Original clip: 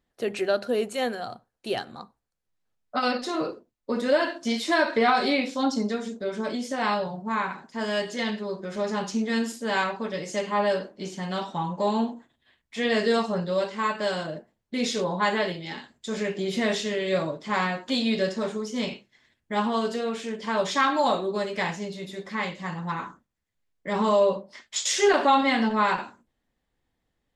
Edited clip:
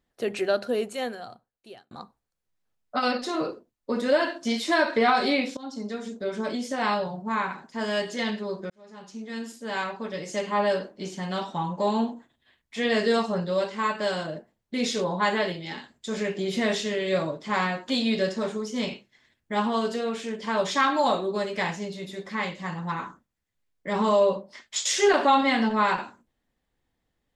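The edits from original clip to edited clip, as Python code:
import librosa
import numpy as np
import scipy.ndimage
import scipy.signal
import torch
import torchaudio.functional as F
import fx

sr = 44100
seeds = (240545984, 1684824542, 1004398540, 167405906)

y = fx.edit(x, sr, fx.fade_out_span(start_s=0.6, length_s=1.31),
    fx.fade_in_from(start_s=5.57, length_s=0.67, floor_db=-20.5),
    fx.fade_in_span(start_s=8.7, length_s=1.84), tone=tone)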